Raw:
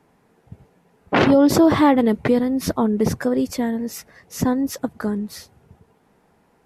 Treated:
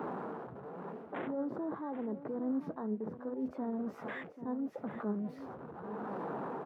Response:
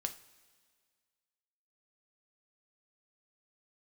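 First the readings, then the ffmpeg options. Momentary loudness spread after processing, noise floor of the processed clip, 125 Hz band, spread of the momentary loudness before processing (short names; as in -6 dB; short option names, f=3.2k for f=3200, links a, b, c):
8 LU, -51 dBFS, -19.5 dB, 14 LU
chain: -filter_complex "[0:a]aeval=exprs='val(0)+0.5*0.0355*sgn(val(0))':c=same,areverse,acompressor=threshold=-26dB:ratio=16,areverse,highpass=53,acrossover=split=180 2600:gain=0.126 1 0.0631[a][b][c];[a][b][c]amix=inputs=3:normalize=0,afwtdn=0.0126,tremolo=f=0.79:d=0.62,alimiter=level_in=5dB:limit=-24dB:level=0:latency=1:release=69,volume=-5dB,asplit=2[d][e];[e]aecho=0:1:788:0.224[f];[d][f]amix=inputs=2:normalize=0,flanger=delay=4.1:depth=3.9:regen=80:speed=1:shape=triangular,volume=3dB"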